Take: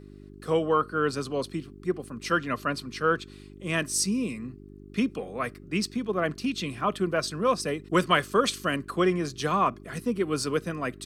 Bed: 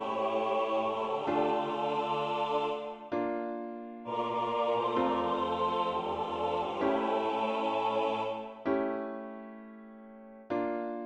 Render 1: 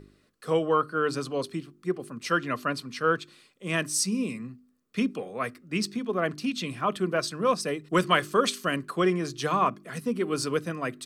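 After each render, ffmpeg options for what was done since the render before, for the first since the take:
-af "bandreject=f=50:t=h:w=4,bandreject=f=100:t=h:w=4,bandreject=f=150:t=h:w=4,bandreject=f=200:t=h:w=4,bandreject=f=250:t=h:w=4,bandreject=f=300:t=h:w=4,bandreject=f=350:t=h:w=4,bandreject=f=400:t=h:w=4"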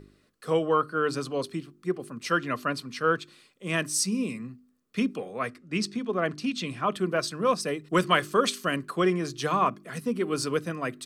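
-filter_complex "[0:a]asettb=1/sr,asplit=3[a][b][c];[a]atrim=end=5.394[d];[b]atrim=start=5.39:end=6.95,asetpts=PTS-STARTPTS,afade=t=in:d=0.004:c=qsin,afade=t=out:st=1.556:d=0.004:c=qsin,lowpass=9.3k[e];[c]atrim=start=6.946[f];[d][e]acrossfade=d=0.004:c1=hsin:c2=qsin[g];[g][f]acrossfade=d=0.004:c1=qsin:c2=hsin"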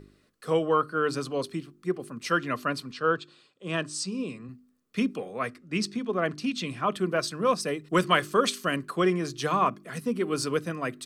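-filter_complex "[0:a]asettb=1/sr,asplit=3[a][b][c];[a]atrim=end=2.914[d];[b]atrim=start=2.91:end=4.49,asetpts=PTS-STARTPTS,afade=t=in:d=0.004:c=qsin,afade=t=out:st=1.576:d=0.004:c=qsin,highpass=100,equalizer=f=220:t=q:w=4:g=-8,equalizer=f=2.1k:t=q:w=4:g=-10,equalizer=f=5.9k:t=q:w=4:g=-9,lowpass=f=7.2k:w=0.5412,lowpass=f=7.2k:w=1.3066[e];[c]atrim=start=4.486[f];[d][e]acrossfade=d=0.004:c1=hsin:c2=qsin[g];[g][f]acrossfade=d=0.004:c1=qsin:c2=hsin"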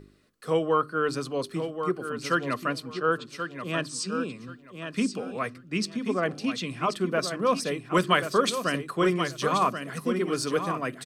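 -af "aecho=1:1:1082|2164|3246:0.398|0.0796|0.0159"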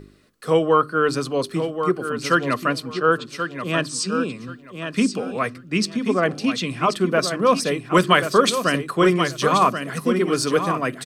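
-af "volume=7dB,alimiter=limit=-2dB:level=0:latency=1"

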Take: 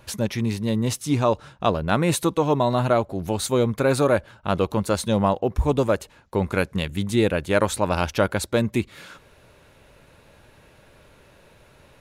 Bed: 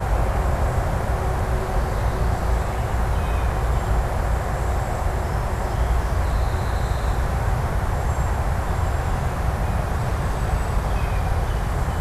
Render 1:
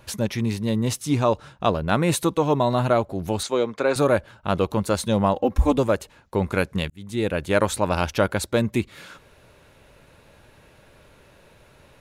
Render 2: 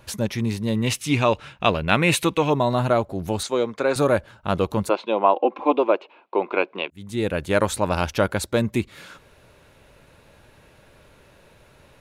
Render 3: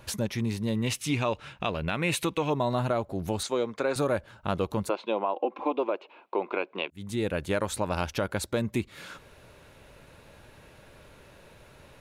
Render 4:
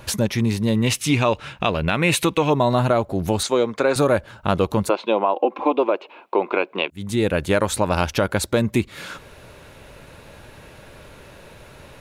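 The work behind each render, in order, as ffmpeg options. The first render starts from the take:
-filter_complex "[0:a]asettb=1/sr,asplit=3[a][b][c];[a]atrim=end=3.434[d];[b]atrim=start=3.43:end=3.96,asetpts=PTS-STARTPTS,afade=t=in:d=0.004:c=qsin,afade=t=out:st=0.526:d=0.004:c=qsin,acrossover=split=270 7400:gain=0.126 1 0.0631[e][f][g];[e][f][g]amix=inputs=3:normalize=0[h];[c]atrim=start=3.956[i];[d][h]acrossfade=d=0.004:c1=hsin:c2=qsin[j];[j][i]acrossfade=d=0.004:c1=qsin:c2=hsin,asettb=1/sr,asplit=3[k][l][m];[k]atrim=end=5.354[n];[l]atrim=start=5.35:end=5.78,asetpts=PTS-STARTPTS,afade=t=in:d=0.004:c=qsin,afade=t=out:st=0.426:d=0.004:c=qsin,aecho=1:1:3.7:0.95,atrim=end_sample=18963[o];[m]atrim=start=5.776[p];[n][o]acrossfade=d=0.004:c1=hsin:c2=qsin[q];[q][p]acrossfade=d=0.004:c1=qsin:c2=hsin,asplit=2[r][s];[r]atrim=end=6.9,asetpts=PTS-STARTPTS,afade=t=out:st=6.896:d=0.004:c=hsin[t];[s]atrim=start=6.9,asetpts=PTS-STARTPTS,afade=t=in:d=0.54[u];[t][u]concat=n=2:v=0:a=1"
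-filter_complex "[0:a]asettb=1/sr,asplit=3[a][b][c];[a]atrim=end=0.754[d];[b]atrim=start=0.75:end=2.5,asetpts=PTS-STARTPTS,afade=t=in:d=0.004:c=qsin,afade=t=out:st=1.746:d=0.004:c=qsin,equalizer=f=2.5k:t=o:w=0.93:g=12.5[e];[c]atrim=start=2.496[f];[d][e]acrossfade=d=0.004:c1=hsin:c2=qsin[g];[g][f]acrossfade=d=0.004:c1=qsin:c2=hsin,asplit=3[h][i][j];[h]afade=t=out:st=4.88:d=0.02[k];[i]highpass=f=310:w=0.5412,highpass=f=310:w=1.3066,equalizer=f=350:t=q:w=4:g=6,equalizer=f=700:t=q:w=4:g=5,equalizer=f=1k:t=q:w=4:g=7,equalizer=f=1.8k:t=q:w=4:g=-9,equalizer=f=2.5k:t=q:w=4:g=8,lowpass=f=3.3k:w=0.5412,lowpass=f=3.3k:w=1.3066,afade=t=in:st=4.88:d=0.02,afade=t=out:st=6.9:d=0.02[l];[j]afade=t=in:st=6.9:d=0.02[m];[k][l][m]amix=inputs=3:normalize=0"
-af "alimiter=limit=-10.5dB:level=0:latency=1:release=188,acompressor=threshold=-34dB:ratio=1.5"
-af "volume=9dB"

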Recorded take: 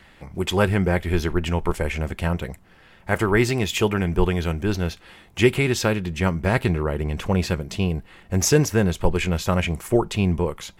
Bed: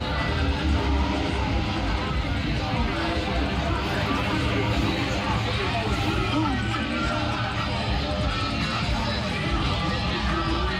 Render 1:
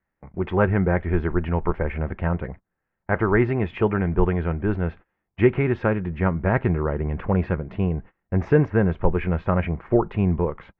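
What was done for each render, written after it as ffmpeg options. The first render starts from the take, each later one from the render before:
-af "agate=range=-28dB:threshold=-37dB:ratio=16:detection=peak,lowpass=f=1.9k:w=0.5412,lowpass=f=1.9k:w=1.3066"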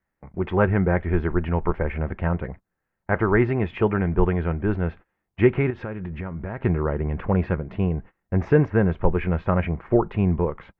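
-filter_complex "[0:a]asettb=1/sr,asplit=3[a][b][c];[a]atrim=end=5.704[d];[b]atrim=start=5.7:end=6.62,asetpts=PTS-STARTPTS,afade=t=in:d=0.004:c=qsin,afade=t=out:st=0.916:d=0.004:c=qsin,acompressor=threshold=-27dB:ratio=6:attack=3.2:release=140:knee=1:detection=peak[e];[c]atrim=start=6.616[f];[d][e]acrossfade=d=0.004:c1=hsin:c2=qsin[g];[g][f]acrossfade=d=0.004:c1=qsin:c2=hsin"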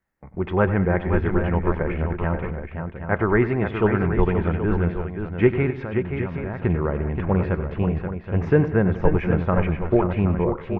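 -af "aecho=1:1:97|193|528|773:0.211|0.112|0.447|0.299"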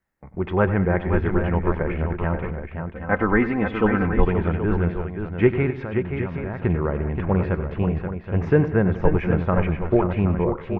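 -filter_complex "[0:a]asettb=1/sr,asplit=3[a][b][c];[a]atrim=end=2.944[d];[b]atrim=start=2.94:end=4.28,asetpts=PTS-STARTPTS,afade=t=in:d=0.004:c=qsin,afade=t=out:st=1.336:d=0.004:c=qsin,aecho=1:1:3.9:0.65,atrim=end_sample=59094[e];[c]atrim=start=4.276[f];[d][e]acrossfade=d=0.004:c1=hsin:c2=qsin[g];[g][f]acrossfade=d=0.004:c1=qsin:c2=hsin"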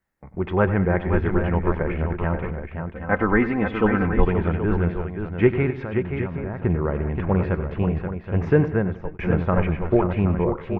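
-filter_complex "[0:a]asettb=1/sr,asplit=3[a][b][c];[a]atrim=end=6.274[d];[b]atrim=start=6.27:end=6.88,asetpts=PTS-STARTPTS,afade=t=in:d=0.004:c=qsin,afade=t=out:st=0.606:d=0.004:c=qsin,highshelf=f=3k:g=-12[e];[c]atrim=start=6.876[f];[d][e]acrossfade=d=0.004:c1=hsin:c2=qsin[g];[g][f]acrossfade=d=0.004:c1=qsin:c2=hsin,asplit=2[h][i];[h]atrim=end=9.19,asetpts=PTS-STARTPTS,afade=t=out:st=8.65:d=0.54[j];[i]atrim=start=9.19,asetpts=PTS-STARTPTS,afade=t=in:d=0.004:c=hsin[k];[j][k]concat=n=2:v=0:a=1"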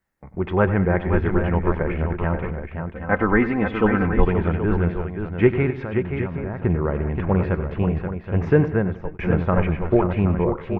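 -af "volume=1dB"

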